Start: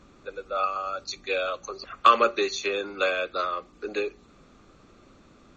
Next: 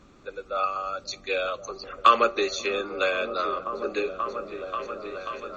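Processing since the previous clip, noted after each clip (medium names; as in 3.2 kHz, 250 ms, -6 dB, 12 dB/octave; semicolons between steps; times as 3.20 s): delay with an opening low-pass 535 ms, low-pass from 200 Hz, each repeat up 1 oct, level -3 dB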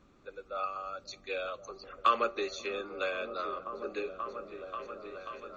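treble shelf 4.6 kHz -4.5 dB; trim -8.5 dB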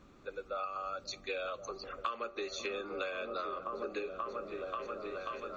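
compression 8:1, threshold -38 dBFS, peak gain reduction 17.5 dB; trim +3.5 dB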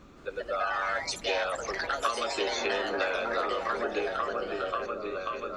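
ever faster or slower copies 173 ms, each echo +3 st, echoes 3; trim +6.5 dB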